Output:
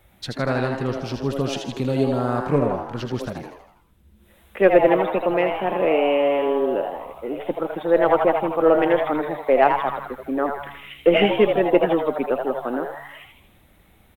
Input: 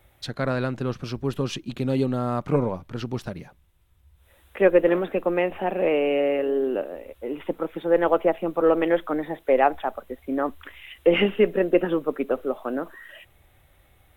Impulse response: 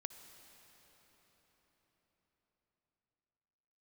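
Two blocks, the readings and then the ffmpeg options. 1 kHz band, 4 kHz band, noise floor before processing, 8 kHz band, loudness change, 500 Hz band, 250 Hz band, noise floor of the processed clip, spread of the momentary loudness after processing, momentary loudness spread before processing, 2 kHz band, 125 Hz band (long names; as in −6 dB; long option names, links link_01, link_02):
+6.0 dB, +3.5 dB, −60 dBFS, can't be measured, +3.0 dB, +3.0 dB, +2.0 dB, −56 dBFS, 13 LU, 13 LU, +3.5 dB, +2.0 dB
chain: -filter_complex "[0:a]aeval=exprs='0.596*(cos(1*acos(clip(val(0)/0.596,-1,1)))-cos(1*PI/2))+0.0299*(cos(3*acos(clip(val(0)/0.596,-1,1)))-cos(3*PI/2))':channel_layout=same,asplit=7[link_01][link_02][link_03][link_04][link_05][link_06][link_07];[link_02]adelay=80,afreqshift=140,volume=-6dB[link_08];[link_03]adelay=160,afreqshift=280,volume=-12dB[link_09];[link_04]adelay=240,afreqshift=420,volume=-18dB[link_10];[link_05]adelay=320,afreqshift=560,volume=-24.1dB[link_11];[link_06]adelay=400,afreqshift=700,volume=-30.1dB[link_12];[link_07]adelay=480,afreqshift=840,volume=-36.1dB[link_13];[link_01][link_08][link_09][link_10][link_11][link_12][link_13]amix=inputs=7:normalize=0,volume=3dB"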